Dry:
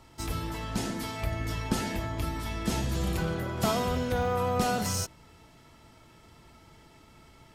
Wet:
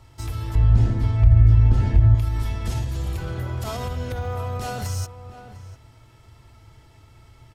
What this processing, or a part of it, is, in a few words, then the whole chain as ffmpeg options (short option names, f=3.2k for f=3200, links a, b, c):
car stereo with a boomy subwoofer: -filter_complex "[0:a]lowshelf=f=140:t=q:w=3:g=6.5,alimiter=limit=-20dB:level=0:latency=1:release=76,asettb=1/sr,asplit=3[a][b][c];[a]atrim=end=0.554[d];[b]atrim=start=0.55:end=2.15,asetpts=PTS-STARTPTS,afade=t=in:d=0.004:c=qsin,afade=t=out:st=1.596:d=0.004:c=qsin,aemphasis=mode=reproduction:type=riaa[e];[c]atrim=start=2.146[f];[d][e]acrossfade=d=0.004:c1=hsin:c2=qsin[g];[g][f]acrossfade=d=0.004:c1=qsin:c2=hsin,asplit=2[h][i];[i]adelay=699.7,volume=-12dB,highshelf=f=4k:g=-15.7[j];[h][j]amix=inputs=2:normalize=0"